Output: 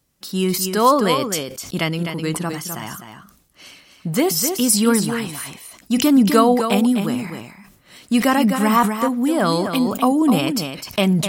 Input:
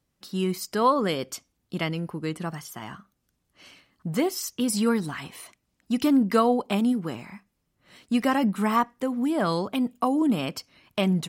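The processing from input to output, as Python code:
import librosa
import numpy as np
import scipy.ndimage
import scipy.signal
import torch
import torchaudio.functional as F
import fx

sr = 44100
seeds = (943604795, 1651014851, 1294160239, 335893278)

p1 = fx.high_shelf(x, sr, hz=5500.0, db=9.0)
p2 = p1 + fx.echo_single(p1, sr, ms=255, db=-8.0, dry=0)
p3 = fx.sustainer(p2, sr, db_per_s=79.0)
y = F.gain(torch.from_numpy(p3), 6.0).numpy()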